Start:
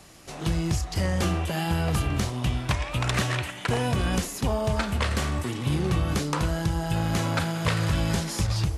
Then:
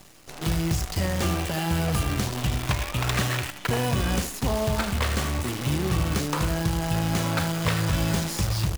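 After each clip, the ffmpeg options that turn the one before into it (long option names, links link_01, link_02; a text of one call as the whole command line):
ffmpeg -i in.wav -af "areverse,acompressor=mode=upward:threshold=-39dB:ratio=2.5,areverse,aecho=1:1:79:0.237,acrusher=bits=6:dc=4:mix=0:aa=0.000001" out.wav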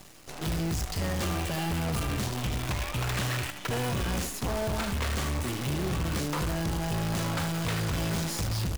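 ffmpeg -i in.wav -af "asoftclip=type=hard:threshold=-27dB" out.wav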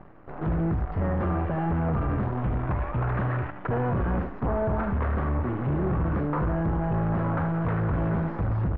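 ffmpeg -i in.wav -af "lowpass=frequency=1500:width=0.5412,lowpass=frequency=1500:width=1.3066,volume=4.5dB" out.wav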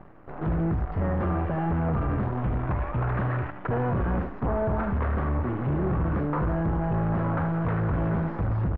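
ffmpeg -i in.wav -filter_complex "[0:a]asplit=2[link_01][link_02];[link_02]adelay=160,highpass=300,lowpass=3400,asoftclip=type=hard:threshold=-29.5dB,volume=-28dB[link_03];[link_01][link_03]amix=inputs=2:normalize=0" out.wav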